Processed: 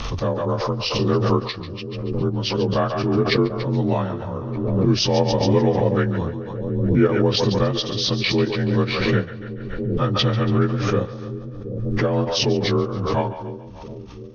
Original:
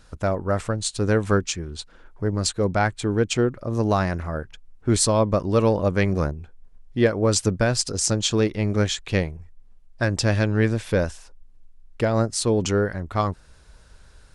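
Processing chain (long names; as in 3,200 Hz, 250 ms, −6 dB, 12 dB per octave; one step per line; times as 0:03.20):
partials spread apart or drawn together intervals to 86%
transient designer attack +3 dB, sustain −9 dB
on a send: echo with a time of its own for lows and highs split 490 Hz, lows 727 ms, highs 142 ms, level −12.5 dB
on the sum: background raised ahead of every attack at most 32 dB per second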